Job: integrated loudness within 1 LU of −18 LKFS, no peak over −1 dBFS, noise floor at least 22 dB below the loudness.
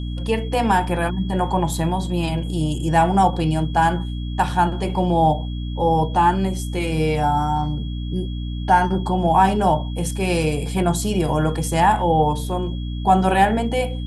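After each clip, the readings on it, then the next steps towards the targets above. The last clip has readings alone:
mains hum 60 Hz; hum harmonics up to 300 Hz; level of the hum −24 dBFS; interfering tone 3,300 Hz; level of the tone −41 dBFS; integrated loudness −20.5 LKFS; sample peak −3.5 dBFS; target loudness −18.0 LKFS
→ mains-hum notches 60/120/180/240/300 Hz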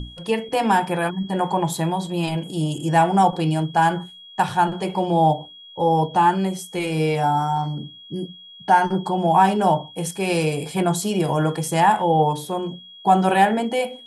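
mains hum none found; interfering tone 3,300 Hz; level of the tone −41 dBFS
→ notch filter 3,300 Hz, Q 30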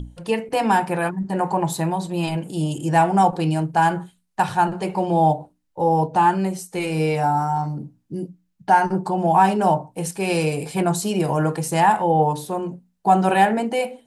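interfering tone none found; integrated loudness −20.5 LKFS; sample peak −4.5 dBFS; target loudness −18.0 LKFS
→ level +2.5 dB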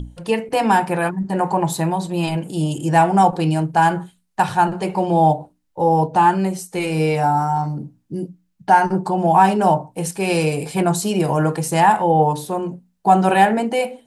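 integrated loudness −18.0 LKFS; sample peak −2.0 dBFS; background noise floor −65 dBFS

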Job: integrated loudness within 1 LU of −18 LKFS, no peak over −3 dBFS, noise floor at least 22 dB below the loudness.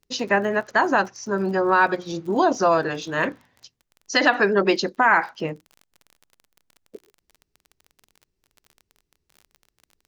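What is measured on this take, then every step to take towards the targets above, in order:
crackle rate 29 per second; integrated loudness −21.0 LKFS; sample peak −4.5 dBFS; target loudness −18.0 LKFS
→ click removal
level +3 dB
brickwall limiter −3 dBFS

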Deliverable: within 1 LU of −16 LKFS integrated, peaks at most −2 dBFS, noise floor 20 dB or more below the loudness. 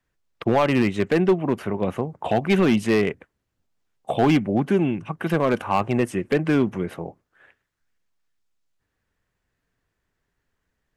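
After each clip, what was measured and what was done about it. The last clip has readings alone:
share of clipped samples 1.0%; peaks flattened at −12.0 dBFS; integrated loudness −22.5 LKFS; sample peak −12.0 dBFS; target loudness −16.0 LKFS
→ clipped peaks rebuilt −12 dBFS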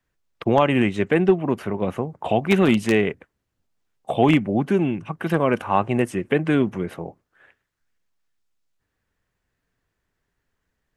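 share of clipped samples 0.0%; integrated loudness −21.5 LKFS; sample peak −3.0 dBFS; target loudness −16.0 LKFS
→ level +5.5 dB
brickwall limiter −2 dBFS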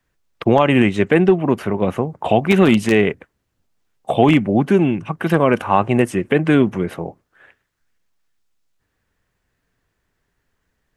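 integrated loudness −16.5 LKFS; sample peak −2.0 dBFS; background noise floor −73 dBFS

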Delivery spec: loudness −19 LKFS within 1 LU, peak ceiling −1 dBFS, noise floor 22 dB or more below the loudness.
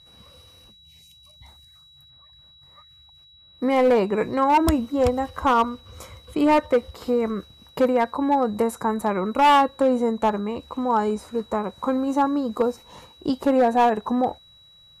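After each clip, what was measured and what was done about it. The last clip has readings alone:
share of clipped samples 1.1%; peaks flattened at −12.5 dBFS; interfering tone 3,900 Hz; level of the tone −50 dBFS; integrated loudness −22.0 LKFS; sample peak −12.5 dBFS; target loudness −19.0 LKFS
→ clipped peaks rebuilt −12.5 dBFS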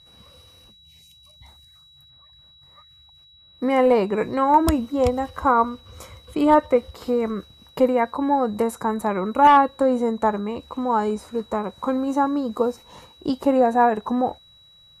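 share of clipped samples 0.0%; interfering tone 3,900 Hz; level of the tone −50 dBFS
→ notch filter 3,900 Hz, Q 30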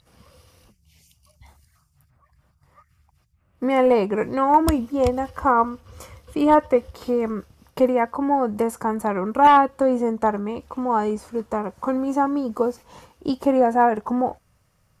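interfering tone none found; integrated loudness −21.0 LKFS; sample peak −4.0 dBFS; target loudness −19.0 LKFS
→ level +2 dB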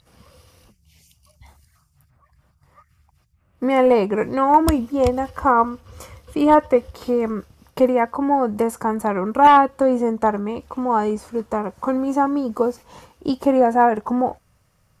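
integrated loudness −19.0 LKFS; sample peak −2.0 dBFS; background noise floor −62 dBFS

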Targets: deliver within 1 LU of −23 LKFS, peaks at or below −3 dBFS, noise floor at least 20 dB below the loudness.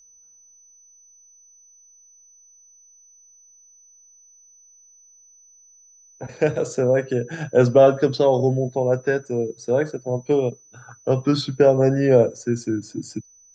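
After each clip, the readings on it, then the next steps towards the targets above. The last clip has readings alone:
interfering tone 6,000 Hz; level of the tone −50 dBFS; integrated loudness −20.5 LKFS; sample peak −3.5 dBFS; target loudness −23.0 LKFS
→ notch filter 6,000 Hz, Q 30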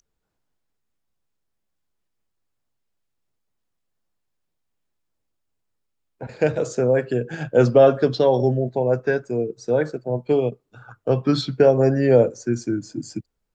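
interfering tone none found; integrated loudness −20.0 LKFS; sample peak −3.5 dBFS; target loudness −23.0 LKFS
→ level −3 dB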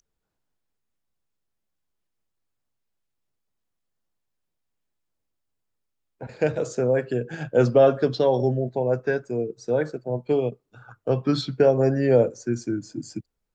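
integrated loudness −23.0 LKFS; sample peak −6.5 dBFS; background noise floor −79 dBFS

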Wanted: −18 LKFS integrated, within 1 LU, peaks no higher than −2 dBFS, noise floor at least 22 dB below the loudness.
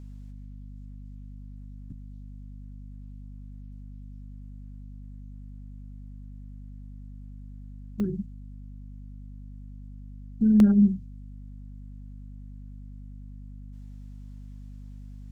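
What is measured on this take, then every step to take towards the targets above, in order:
number of dropouts 2; longest dropout 1.3 ms; mains hum 50 Hz; hum harmonics up to 250 Hz; level of the hum −40 dBFS; integrated loudness −23.5 LKFS; sample peak −9.5 dBFS; target loudness −18.0 LKFS
→ repair the gap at 0:08.00/0:10.60, 1.3 ms
hum removal 50 Hz, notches 5
level +5.5 dB

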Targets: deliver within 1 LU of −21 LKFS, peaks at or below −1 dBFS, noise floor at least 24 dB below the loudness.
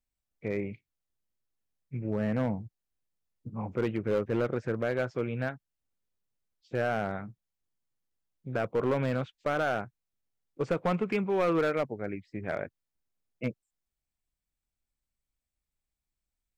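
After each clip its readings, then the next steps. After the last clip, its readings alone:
share of clipped samples 0.9%; peaks flattened at −21.5 dBFS; integrated loudness −32.0 LKFS; sample peak −21.5 dBFS; target loudness −21.0 LKFS
→ clipped peaks rebuilt −21.5 dBFS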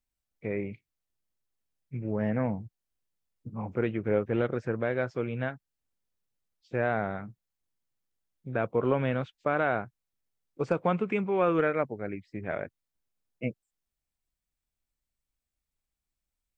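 share of clipped samples 0.0%; integrated loudness −30.5 LKFS; sample peak −13.0 dBFS; target loudness −21.0 LKFS
→ level +9.5 dB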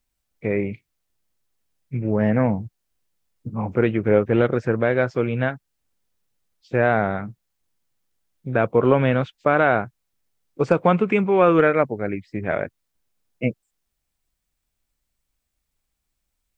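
integrated loudness −21.0 LKFS; sample peak −3.5 dBFS; background noise floor −78 dBFS

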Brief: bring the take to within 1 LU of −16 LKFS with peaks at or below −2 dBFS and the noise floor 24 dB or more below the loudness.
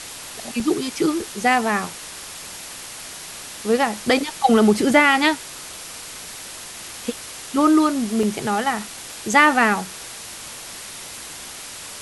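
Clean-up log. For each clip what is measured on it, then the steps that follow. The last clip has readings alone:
number of dropouts 2; longest dropout 2.7 ms; background noise floor −36 dBFS; target noise floor −44 dBFS; integrated loudness −19.5 LKFS; sample peak −1.5 dBFS; target loudness −16.0 LKFS
→ repair the gap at 0:00.60/0:08.23, 2.7 ms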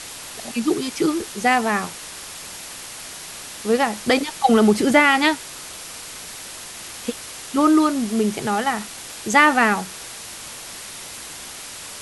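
number of dropouts 0; background noise floor −36 dBFS; target noise floor −44 dBFS
→ broadband denoise 8 dB, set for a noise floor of −36 dBFS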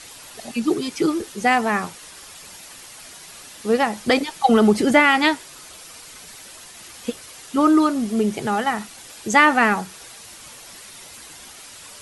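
background noise floor −42 dBFS; target noise floor −43 dBFS
→ broadband denoise 6 dB, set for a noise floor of −42 dBFS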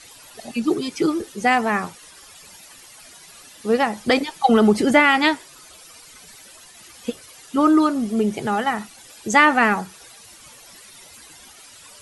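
background noise floor −46 dBFS; integrated loudness −19.0 LKFS; sample peak −1.5 dBFS; target loudness −16.0 LKFS
→ level +3 dB
brickwall limiter −2 dBFS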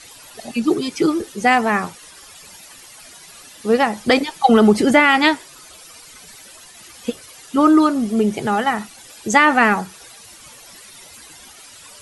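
integrated loudness −16.5 LKFS; sample peak −2.0 dBFS; background noise floor −43 dBFS

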